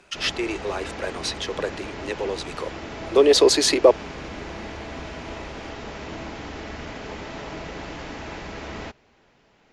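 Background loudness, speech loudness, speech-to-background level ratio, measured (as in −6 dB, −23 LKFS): −35.5 LKFS, −21.5 LKFS, 14.0 dB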